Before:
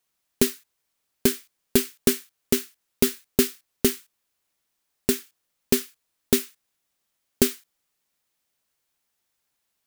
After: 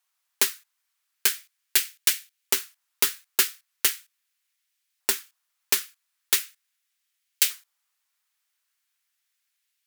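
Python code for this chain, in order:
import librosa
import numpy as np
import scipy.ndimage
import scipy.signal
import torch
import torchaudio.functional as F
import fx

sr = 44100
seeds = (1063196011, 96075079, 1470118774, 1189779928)

y = fx.cheby_harmonics(x, sr, harmonics=(7,), levels_db=(-25,), full_scale_db=-3.0)
y = fx.filter_lfo_highpass(y, sr, shape='saw_up', hz=0.4, low_hz=970.0, high_hz=2200.0, q=1.2)
y = y * librosa.db_to_amplitude(4.0)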